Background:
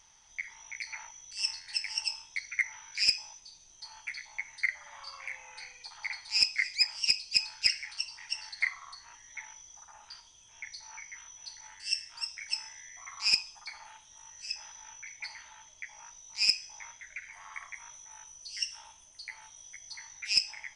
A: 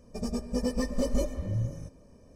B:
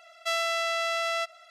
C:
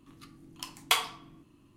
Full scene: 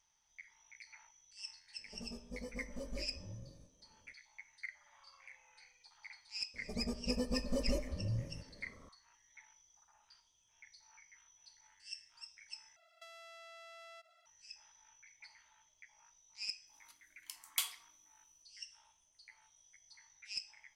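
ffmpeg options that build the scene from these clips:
-filter_complex "[1:a]asplit=2[a][b];[0:a]volume=-16dB[c];[a]asplit=2[d][e];[e]adelay=22,volume=-8dB[f];[d][f]amix=inputs=2:normalize=0[g];[b]acompressor=mode=upward:threshold=-43dB:ratio=2.5:attack=3.2:release=140:knee=2.83:detection=peak[h];[2:a]acompressor=threshold=-34dB:ratio=6:attack=3.2:release=140:knee=1:detection=peak[i];[3:a]aderivative[j];[c]asplit=2[k][l];[k]atrim=end=12.764[m];[i]atrim=end=1.5,asetpts=PTS-STARTPTS,volume=-16dB[n];[l]atrim=start=14.256[o];[g]atrim=end=2.35,asetpts=PTS-STARTPTS,volume=-17.5dB,afade=t=in:d=0.004:c=hsin,afade=t=out:st=2.346:d=0.004:c=hsin,adelay=1780[p];[h]atrim=end=2.35,asetpts=PTS-STARTPTS,volume=-7.5dB,afade=t=in:d=0.004:c=hsin,afade=t=out:st=2.346:d=0.004:c=hsin,adelay=6540[q];[j]atrim=end=1.76,asetpts=PTS-STARTPTS,volume=-5dB,afade=t=in:d=0.004:c=hsin,afade=t=out:st=1.756:d=0.004:c=hsin,adelay=16670[r];[m][n]acrossfade=d=0.004:c1=hsin:c2=hsin[s];[s][o]acrossfade=d=0.004:c1=hsin:c2=hsin[t];[t][p][q][r]amix=inputs=4:normalize=0"

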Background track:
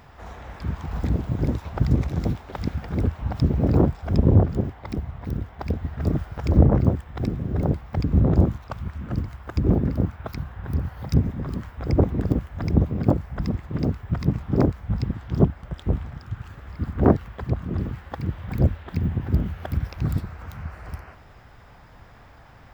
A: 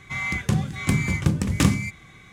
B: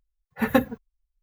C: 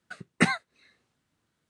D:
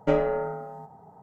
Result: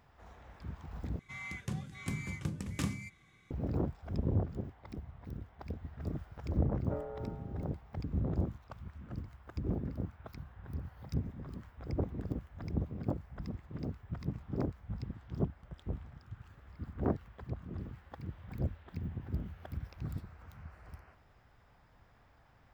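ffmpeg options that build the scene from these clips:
-filter_complex "[0:a]volume=-15.5dB[a];[4:a]lowpass=f=1.5k:w=0.5412,lowpass=f=1.5k:w=1.3066[b];[a]asplit=2[c][d];[c]atrim=end=1.194[e];[1:a]atrim=end=2.32,asetpts=PTS-STARTPTS,volume=-16dB[f];[d]atrim=start=3.506[g];[b]atrim=end=1.22,asetpts=PTS-STARTPTS,volume=-17.5dB,afade=t=in:d=0.004:c=hsin,afade=t=out:st=1.216:d=0.004:c=hsin,adelay=6830[h];[e][f]acrossfade=d=0.004:c1=hsin:c2=hsin[i];[i][g]acrossfade=d=0.004:c1=hsin:c2=hsin[j];[j][h]amix=inputs=2:normalize=0"

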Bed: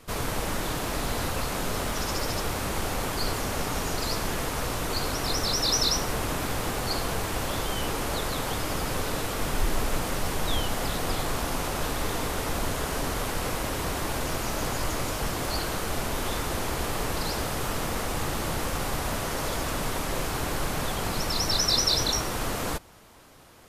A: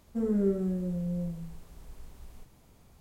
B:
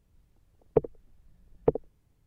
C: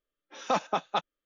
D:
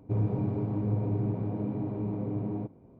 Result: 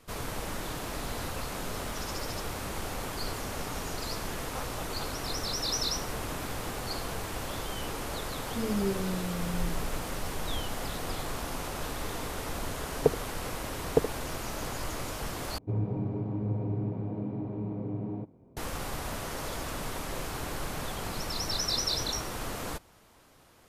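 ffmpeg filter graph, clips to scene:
-filter_complex "[0:a]volume=-6.5dB,asplit=2[a][b];[a]atrim=end=15.584[c];[4:a]atrim=end=2.99,asetpts=PTS-STARTPTS,volume=-2.5dB[d];[b]atrim=start=18.566[e];[3:a]atrim=end=1.25,asetpts=PTS-STARTPTS,volume=-15.5dB,afade=t=in:d=0.004:c=hsin,afade=t=out:st=1.246:d=0.004:c=hsin,adelay=178605S[f];[1:a]atrim=end=3,asetpts=PTS-STARTPTS,volume=-3.5dB,afade=t=in:d=0.004:c=hsin,afade=t=out:st=2.996:d=0.004:c=hsin,adelay=8400[g];[2:a]atrim=end=2.26,asetpts=PTS-STARTPTS,volume=-0.5dB,afade=t=in:d=0.004:c=hsin,afade=t=out:st=2.256:d=0.004:c=hsin,adelay=12290[h];[c][d]acrossfade=d=0.004:c1=hsin:c2=hsin[i];[i][e]acrossfade=d=0.004:c1=hsin:c2=hsin[j];[j][f][g][h]amix=inputs=4:normalize=0"

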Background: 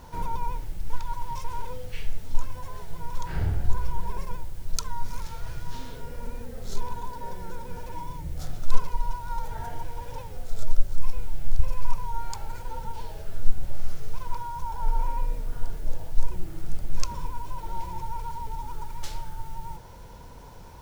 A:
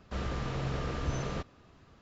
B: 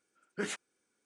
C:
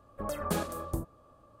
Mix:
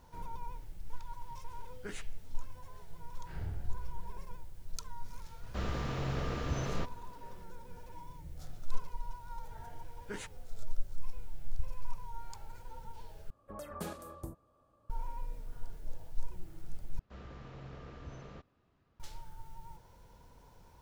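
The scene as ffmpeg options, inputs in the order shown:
-filter_complex "[2:a]asplit=2[a][b];[1:a]asplit=2[c][d];[0:a]volume=-13dB[e];[d]aemphasis=mode=reproduction:type=cd[f];[e]asplit=3[g][h][i];[g]atrim=end=13.304[j];[3:a]atrim=end=1.6,asetpts=PTS-STARTPTS,volume=-10dB[k];[h]atrim=start=14.896:end=16.994[l];[f]atrim=end=2.01,asetpts=PTS-STARTPTS,volume=-14.5dB[m];[i]atrim=start=18.996[n];[a]atrim=end=1.05,asetpts=PTS-STARTPTS,volume=-9dB,afade=t=in:d=0.004:c=hsin,afade=t=out:st=1.046:d=0.004:c=hsin,adelay=1460[o];[c]atrim=end=2.01,asetpts=PTS-STARTPTS,volume=-1.5dB,afade=t=in:d=0.004:c=hsin,afade=t=out:st=2.006:d=0.004:c=hsin,adelay=5430[p];[b]atrim=end=1.05,asetpts=PTS-STARTPTS,volume=-7.5dB,afade=t=in:d=0.004:c=hsin,afade=t=out:st=1.046:d=0.004:c=hsin,adelay=9710[q];[j][k]acrossfade=d=0.004:c1=hsin:c2=hsin[r];[r][l]acrossfade=d=0.004:c1=hsin:c2=hsin[s];[s][m]acrossfade=d=0.004:c1=hsin:c2=hsin[t];[t][n]acrossfade=d=0.004:c1=hsin:c2=hsin[u];[u][o][p][q]amix=inputs=4:normalize=0"

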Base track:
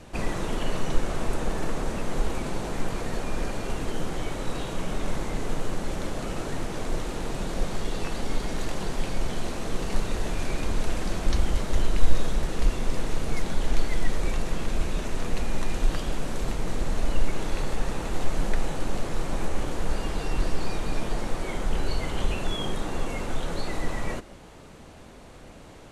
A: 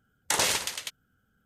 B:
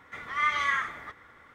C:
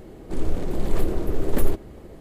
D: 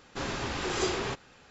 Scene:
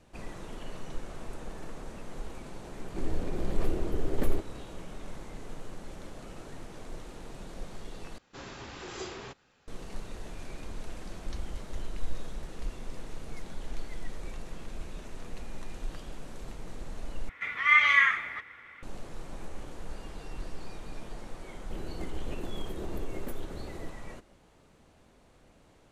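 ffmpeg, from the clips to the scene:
-filter_complex "[3:a]asplit=2[a][b];[0:a]volume=-13.5dB[c];[a]highshelf=f=10k:g=-10.5[d];[2:a]equalizer=f=2.4k:w=1.4:g=15[e];[b]acompressor=threshold=-30dB:ratio=6:attack=3.2:release=140:knee=1:detection=peak[f];[c]asplit=3[g][h][i];[g]atrim=end=8.184[j];[4:a]atrim=end=1.5,asetpts=PTS-STARTPTS,volume=-10.5dB[k];[h]atrim=start=9.676:end=17.294[l];[e]atrim=end=1.54,asetpts=PTS-STARTPTS,volume=-3.5dB[m];[i]atrim=start=18.826[n];[d]atrim=end=2.2,asetpts=PTS-STARTPTS,volume=-6.5dB,afade=t=in:d=0.004:c=hsin,afade=t=out:st=2.196:d=0.004:c=hsin,adelay=2650[o];[f]atrim=end=2.2,asetpts=PTS-STARTPTS,volume=-0.5dB,afade=t=in:d=0.004:c=hsin,afade=t=out:st=2.196:d=0.004:c=hsin,adelay=21700[p];[j][k]acrossfade=d=0.004:c1=hsin:c2=hsin[q];[q][l]acrossfade=d=0.004:c1=hsin:c2=hsin[r];[r][m]acrossfade=d=0.004:c1=hsin:c2=hsin[s];[s][n]acrossfade=d=0.004:c1=hsin:c2=hsin[t];[t][o][p]amix=inputs=3:normalize=0"

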